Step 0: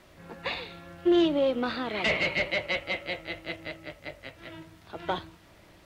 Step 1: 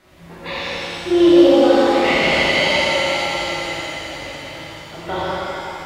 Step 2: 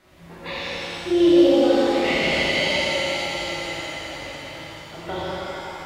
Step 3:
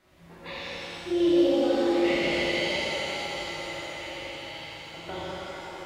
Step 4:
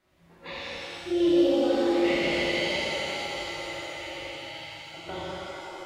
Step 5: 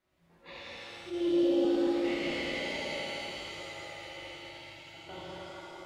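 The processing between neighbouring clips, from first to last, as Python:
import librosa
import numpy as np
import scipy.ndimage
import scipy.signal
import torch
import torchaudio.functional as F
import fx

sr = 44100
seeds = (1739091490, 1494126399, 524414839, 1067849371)

y1 = fx.echo_heads(x, sr, ms=84, heads='first and second', feedback_pct=47, wet_db=-7.5)
y1 = fx.rev_shimmer(y1, sr, seeds[0], rt60_s=2.6, semitones=7, shimmer_db=-8, drr_db=-9.0)
y1 = y1 * librosa.db_to_amplitude(-1.0)
y2 = fx.dynamic_eq(y1, sr, hz=1100.0, q=1.1, threshold_db=-30.0, ratio=4.0, max_db=-6)
y2 = y2 * librosa.db_to_amplitude(-3.5)
y3 = fx.echo_stepped(y2, sr, ms=644, hz=430.0, octaves=1.4, feedback_pct=70, wet_db=-4.5)
y3 = y3 * librosa.db_to_amplitude(-7.0)
y4 = fx.noise_reduce_blind(y3, sr, reduce_db=7)
y5 = fx.reverse_delay_fb(y4, sr, ms=110, feedback_pct=73, wet_db=-7)
y5 = fx.attack_slew(y5, sr, db_per_s=210.0)
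y5 = y5 * librosa.db_to_amplitude(-9.0)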